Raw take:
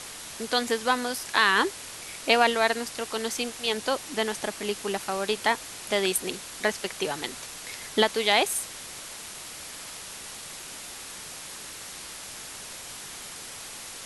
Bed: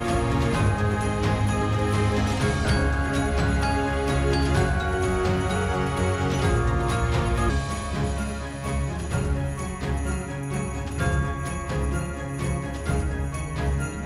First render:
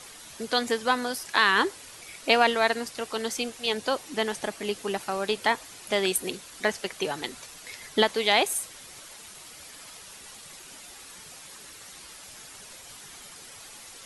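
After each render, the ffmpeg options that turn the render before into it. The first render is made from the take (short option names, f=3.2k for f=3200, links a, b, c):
-af "afftdn=nr=8:nf=-41"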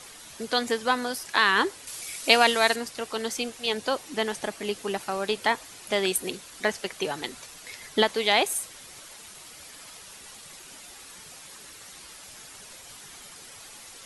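-filter_complex "[0:a]asettb=1/sr,asplit=3[a][b][c];[a]atrim=end=1.874[d];[b]atrim=start=1.87:end=2.76,asetpts=PTS-STARTPTS,afade=t=in:d=0.004:c=qsin,afade=t=out:st=0.886:d=0.004:c=qsin,highshelf=f=3.9k:g=11.5[e];[c]atrim=start=2.756[f];[d][e]acrossfade=d=0.004:c1=hsin:c2=qsin[g];[g][f]acrossfade=d=0.004:c1=qsin:c2=hsin"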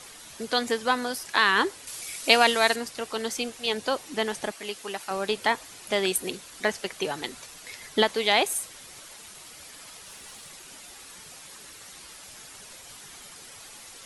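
-filter_complex "[0:a]asettb=1/sr,asplit=3[a][b][c];[a]atrim=end=4.514[d];[b]atrim=start=4.51:end=5.11,asetpts=PTS-STARTPTS,afade=t=in:d=0.004:c=qsin,afade=t=out:st=0.596:d=0.004:c=qsin,lowshelf=f=470:g=-11[e];[c]atrim=start=5.106[f];[d][e]acrossfade=d=0.004:c1=hsin:c2=qsin[g];[g][f]acrossfade=d=0.004:c1=qsin:c2=hsin,asettb=1/sr,asplit=3[h][i][j];[h]atrim=end=10.064[k];[i]atrim=start=10.06:end=10.49,asetpts=PTS-STARTPTS,afade=t=in:d=0.004:c=qsin,afade=t=out:st=0.426:d=0.004:c=qsin,aeval=exprs='val(0)+0.5*0.00126*sgn(val(0))':c=same[l];[j]atrim=start=10.486[m];[k][l]acrossfade=d=0.004:c1=hsin:c2=qsin[n];[n][m]acrossfade=d=0.004:c1=qsin:c2=hsin"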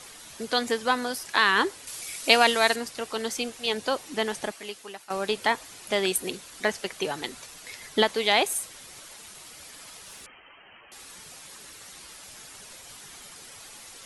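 -filter_complex "[0:a]asettb=1/sr,asplit=3[a][b][c];[a]atrim=end=10.264[d];[b]atrim=start=10.26:end=10.92,asetpts=PTS-STARTPTS,afade=t=in:d=0.004:c=qsin,afade=t=out:st=0.656:d=0.004:c=qsin,lowpass=f=2.7k:t=q:w=0.5098,lowpass=f=2.7k:t=q:w=0.6013,lowpass=f=2.7k:t=q:w=0.9,lowpass=f=2.7k:t=q:w=2.563,afreqshift=-3200[e];[c]atrim=start=10.916[f];[d][e]acrossfade=d=0.004:c1=hsin:c2=qsin[g];[g][f]acrossfade=d=0.004:c1=qsin:c2=hsin,asplit=2[h][i];[h]atrim=end=5.1,asetpts=PTS-STARTPTS,afade=t=out:st=4.42:d=0.68:silence=0.266073[j];[i]atrim=start=5.1,asetpts=PTS-STARTPTS,afade=t=in:d=0.004:c=hsin:silence=0.266073[k];[j][k]concat=n=2:v=0:a=1"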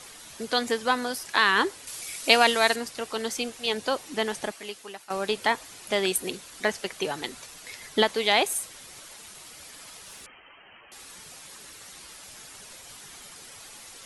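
-af anull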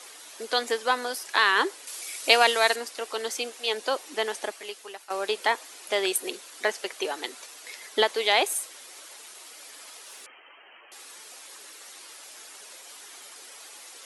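-af "highpass=f=320:w=0.5412,highpass=f=320:w=1.3066"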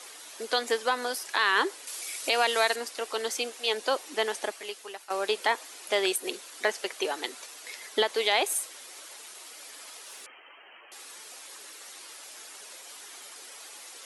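-af "alimiter=limit=-13dB:level=0:latency=1:release=128"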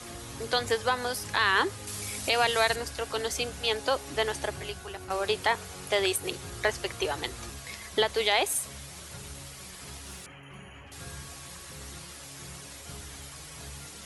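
-filter_complex "[1:a]volume=-20.5dB[a];[0:a][a]amix=inputs=2:normalize=0"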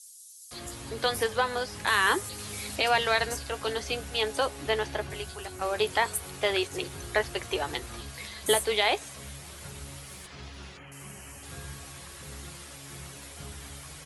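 -filter_complex "[0:a]asplit=2[a][b];[b]adelay=14,volume=-11dB[c];[a][c]amix=inputs=2:normalize=0,acrossover=split=5700[d][e];[d]adelay=510[f];[f][e]amix=inputs=2:normalize=0"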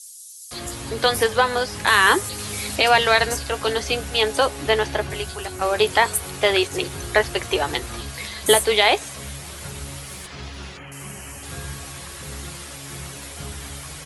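-af "volume=8.5dB"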